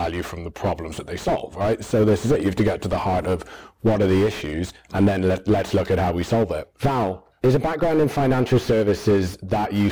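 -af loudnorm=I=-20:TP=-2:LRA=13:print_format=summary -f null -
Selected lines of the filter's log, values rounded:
Input Integrated:    -21.6 LUFS
Input True Peak:      -5.9 dBTP
Input LRA:             1.6 LU
Input Threshold:     -31.6 LUFS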